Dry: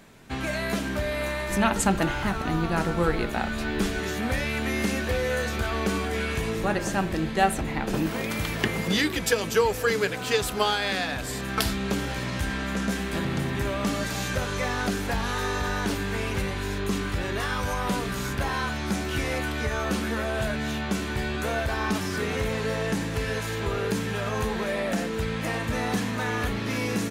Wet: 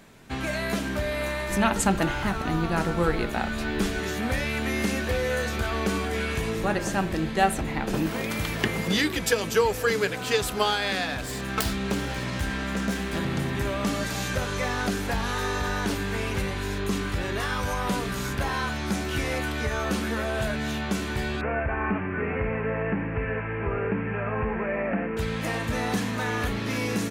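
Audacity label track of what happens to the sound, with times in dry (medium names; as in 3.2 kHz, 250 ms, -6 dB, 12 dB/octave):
11.110000	13.200000	self-modulated delay depth 0.13 ms
21.410000	25.170000	steep low-pass 2.6 kHz 72 dB/octave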